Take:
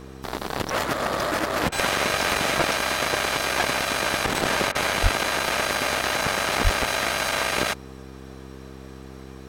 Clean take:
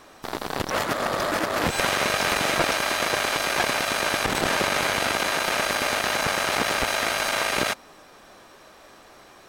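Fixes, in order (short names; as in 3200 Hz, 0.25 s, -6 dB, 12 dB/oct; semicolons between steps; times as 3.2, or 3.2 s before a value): de-hum 65.9 Hz, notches 7; 5.02–5.14 HPF 140 Hz 24 dB/oct; 6.63–6.75 HPF 140 Hz 24 dB/oct; interpolate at 1.69/4.72, 29 ms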